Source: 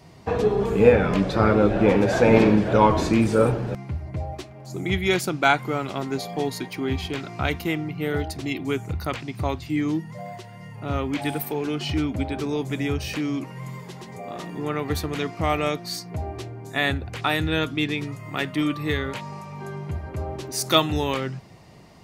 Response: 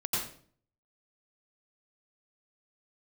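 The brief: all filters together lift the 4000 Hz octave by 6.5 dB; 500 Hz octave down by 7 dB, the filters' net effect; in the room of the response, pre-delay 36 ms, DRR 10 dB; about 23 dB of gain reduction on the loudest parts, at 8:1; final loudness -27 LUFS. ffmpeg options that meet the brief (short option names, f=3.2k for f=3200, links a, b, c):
-filter_complex "[0:a]equalizer=f=500:t=o:g=-8.5,equalizer=f=4k:t=o:g=8,acompressor=threshold=-34dB:ratio=8,asplit=2[a][b];[1:a]atrim=start_sample=2205,adelay=36[c];[b][c]afir=irnorm=-1:irlink=0,volume=-16.5dB[d];[a][d]amix=inputs=2:normalize=0,volume=10dB"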